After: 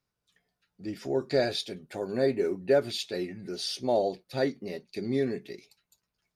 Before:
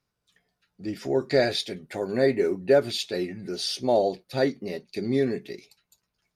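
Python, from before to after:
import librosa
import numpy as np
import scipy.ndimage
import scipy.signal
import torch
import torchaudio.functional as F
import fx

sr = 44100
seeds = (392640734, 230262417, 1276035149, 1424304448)

y = fx.peak_eq(x, sr, hz=2000.0, db=-9.0, octaves=0.21, at=(1.04, 2.45))
y = y * librosa.db_to_amplitude(-4.0)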